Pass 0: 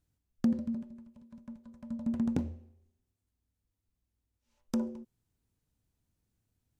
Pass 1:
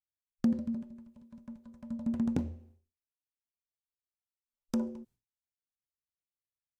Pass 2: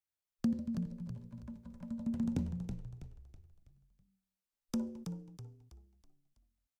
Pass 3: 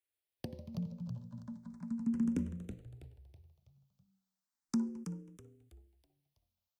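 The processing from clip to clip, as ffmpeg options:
-af "agate=range=0.0224:threshold=0.00141:ratio=3:detection=peak"
-filter_complex "[0:a]acrossover=split=200|3000[s0][s1][s2];[s1]acompressor=threshold=0.00224:ratio=1.5[s3];[s0][s3][s2]amix=inputs=3:normalize=0,asplit=2[s4][s5];[s5]asplit=5[s6][s7][s8][s9][s10];[s6]adelay=325,afreqshift=-55,volume=0.473[s11];[s7]adelay=650,afreqshift=-110,volume=0.2[s12];[s8]adelay=975,afreqshift=-165,volume=0.0832[s13];[s9]adelay=1300,afreqshift=-220,volume=0.0351[s14];[s10]adelay=1625,afreqshift=-275,volume=0.0148[s15];[s11][s12][s13][s14][s15]amix=inputs=5:normalize=0[s16];[s4][s16]amix=inputs=2:normalize=0"
-filter_complex "[0:a]highpass=73,asplit=2[s0][s1];[s1]afreqshift=0.35[s2];[s0][s2]amix=inputs=2:normalize=1,volume=1.41"

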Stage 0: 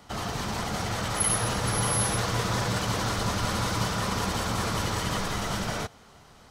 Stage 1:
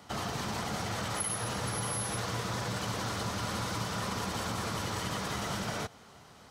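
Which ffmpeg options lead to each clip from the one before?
-af "highpass=78,acompressor=threshold=0.0316:ratio=6,volume=0.891"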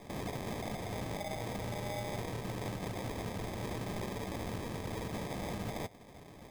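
-af "alimiter=level_in=2.51:limit=0.0631:level=0:latency=1:release=440,volume=0.398,acrusher=samples=31:mix=1:aa=0.000001,volume=1.41"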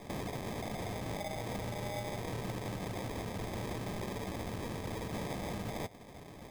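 -af "alimiter=level_in=3.16:limit=0.0631:level=0:latency=1:release=93,volume=0.316,volume=1.33"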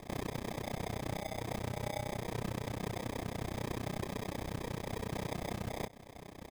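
-filter_complex "[0:a]asplit=2[s0][s1];[s1]adelay=17,volume=0.251[s2];[s0][s2]amix=inputs=2:normalize=0,tremolo=f=31:d=0.974,volume=1.5"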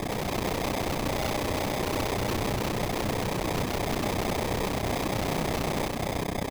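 -af "aeval=exprs='0.0501*sin(PI/2*7.94*val(0)/0.0501)':c=same,aecho=1:1:355:0.596"

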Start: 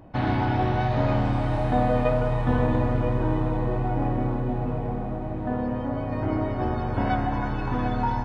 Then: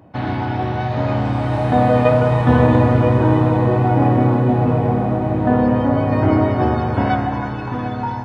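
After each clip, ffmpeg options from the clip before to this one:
-af "highpass=f=72:w=0.5412,highpass=f=72:w=1.3066,dynaudnorm=f=260:g=13:m=3.98,volume=1.26"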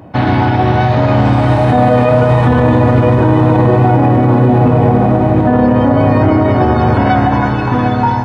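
-af "alimiter=level_in=3.98:limit=0.891:release=50:level=0:latency=1,volume=0.891"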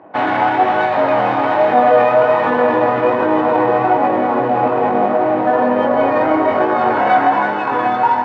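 -af "flanger=delay=19.5:depth=3.7:speed=1.2,adynamicsmooth=sensitivity=7:basefreq=2000,highpass=490,lowpass=2600,volume=1.68"

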